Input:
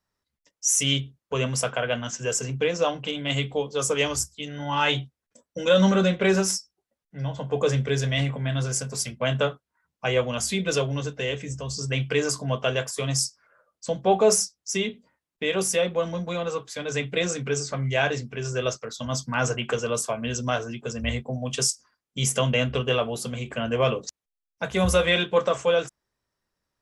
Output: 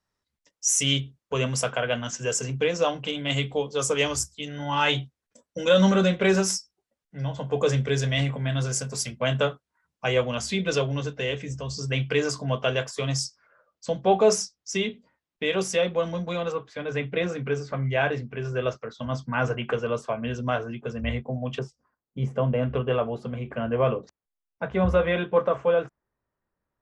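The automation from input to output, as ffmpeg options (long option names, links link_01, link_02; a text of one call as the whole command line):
ffmpeg -i in.wav -af "asetnsamples=nb_out_samples=441:pad=0,asendcmd='10.23 lowpass f 5600;16.52 lowpass f 2400;21.59 lowpass f 1000;22.63 lowpass f 1600',lowpass=10000" out.wav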